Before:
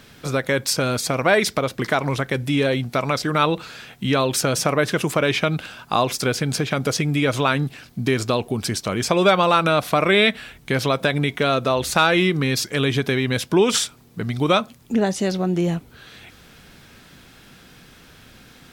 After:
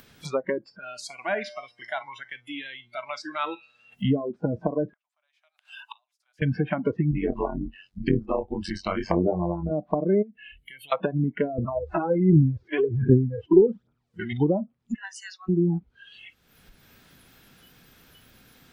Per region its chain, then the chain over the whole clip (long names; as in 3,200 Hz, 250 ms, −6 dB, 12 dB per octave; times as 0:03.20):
0:00.78–0:03.92: high-pass filter 42 Hz + low-shelf EQ 87 Hz −7.5 dB + tuned comb filter 120 Hz, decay 1.5 s, mix 70%
0:04.93–0:06.42: Butterworth high-pass 630 Hz 72 dB per octave + comb filter 6.8 ms, depth 32% + gate with flip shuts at −22 dBFS, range −32 dB
0:07.11–0:09.71: double-tracking delay 23 ms −3.5 dB + amplitude modulation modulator 94 Hz, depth 80%
0:10.22–0:10.92: high-shelf EQ 9,200 Hz +7.5 dB + downward compressor 4 to 1, threshold −35 dBFS + phaser with its sweep stopped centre 2,500 Hz, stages 4
0:11.58–0:14.33: spectrum averaged block by block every 50 ms + high-pass filter 40 Hz + phase shifter 1.3 Hz, delay 3.1 ms, feedback 68%
0:14.94–0:15.49: four-pole ladder high-pass 1,100 Hz, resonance 50% + notch filter 3,400 Hz, Q 23 + saturating transformer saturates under 890 Hz
whole clip: treble cut that deepens with the level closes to 420 Hz, closed at −16 dBFS; noise reduction from a noise print of the clip's start 25 dB; upward compression, threshold −40 dBFS